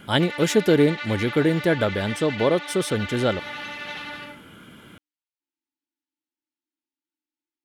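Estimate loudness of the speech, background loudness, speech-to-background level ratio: -22.5 LUFS, -33.0 LUFS, 10.5 dB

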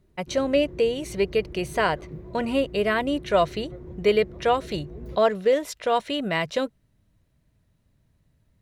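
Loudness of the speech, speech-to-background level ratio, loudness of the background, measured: -25.0 LUFS, 16.5 dB, -41.5 LUFS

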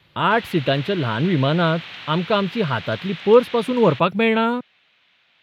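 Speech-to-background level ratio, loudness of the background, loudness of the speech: 14.5 dB, -34.5 LUFS, -20.0 LUFS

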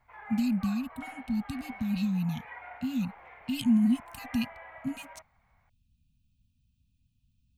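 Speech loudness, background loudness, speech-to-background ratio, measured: -31.0 LUFS, -47.0 LUFS, 16.0 dB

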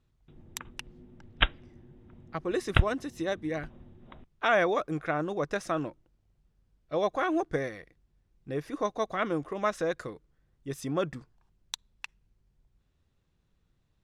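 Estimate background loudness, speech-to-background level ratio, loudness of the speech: -29.5 LUFS, -2.5 dB, -32.0 LUFS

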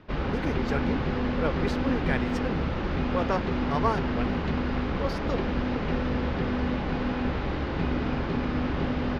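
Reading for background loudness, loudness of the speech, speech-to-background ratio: -29.0 LUFS, -33.0 LUFS, -4.0 dB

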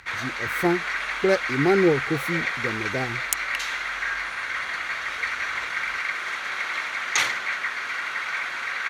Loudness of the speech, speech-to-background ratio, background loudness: -25.5 LUFS, 1.0 dB, -26.5 LUFS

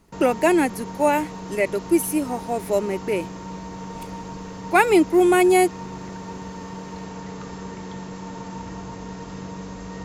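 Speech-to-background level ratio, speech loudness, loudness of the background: 14.5 dB, -20.5 LUFS, -35.0 LUFS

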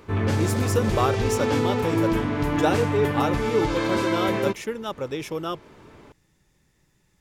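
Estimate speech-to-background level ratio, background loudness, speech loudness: -3.5 dB, -24.5 LUFS, -28.0 LUFS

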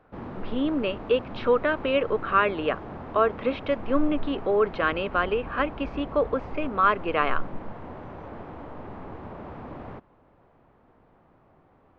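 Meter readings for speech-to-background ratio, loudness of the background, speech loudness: 13.5 dB, -39.5 LUFS, -26.0 LUFS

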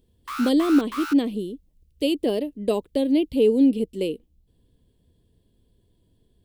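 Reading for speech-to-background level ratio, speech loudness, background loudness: 12.0 dB, -22.5 LUFS, -34.5 LUFS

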